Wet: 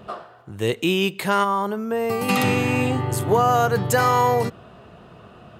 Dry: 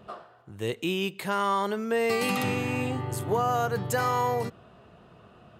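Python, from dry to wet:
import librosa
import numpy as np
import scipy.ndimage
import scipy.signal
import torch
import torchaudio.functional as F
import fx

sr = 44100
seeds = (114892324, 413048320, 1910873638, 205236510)

y = fx.graphic_eq(x, sr, hz=(125, 250, 500, 2000, 4000, 8000), db=(4, -4, -5, -10, -11, -8), at=(1.43, 2.28), fade=0.02)
y = F.gain(torch.from_numpy(y), 8.0).numpy()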